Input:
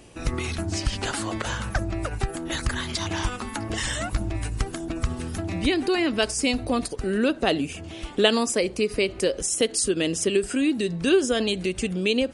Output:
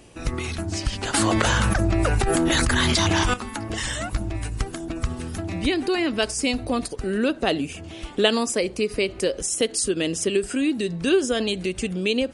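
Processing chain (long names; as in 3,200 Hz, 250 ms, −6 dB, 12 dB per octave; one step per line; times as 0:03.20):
0:01.14–0:03.34: envelope flattener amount 100%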